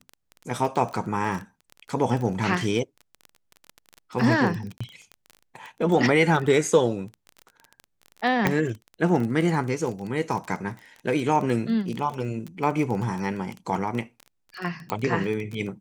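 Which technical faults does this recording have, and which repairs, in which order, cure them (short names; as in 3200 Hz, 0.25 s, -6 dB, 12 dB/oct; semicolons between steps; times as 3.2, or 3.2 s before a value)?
crackle 21/s -29 dBFS
4.78–4.8 gap 25 ms
8.47 pop -7 dBFS
14.9 pop -13 dBFS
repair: de-click; interpolate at 4.78, 25 ms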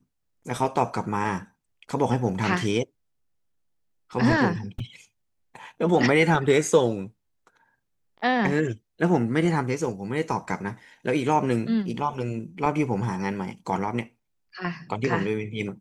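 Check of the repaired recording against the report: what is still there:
none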